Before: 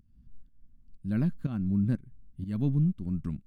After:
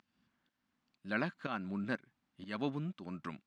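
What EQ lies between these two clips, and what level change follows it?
HPF 820 Hz 12 dB/oct; air absorption 140 m; +13.0 dB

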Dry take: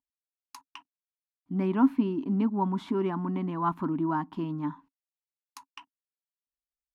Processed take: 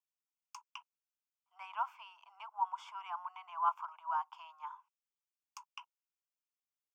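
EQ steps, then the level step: steep high-pass 610 Hz 72 dB/oct; fixed phaser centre 2700 Hz, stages 8; -2.0 dB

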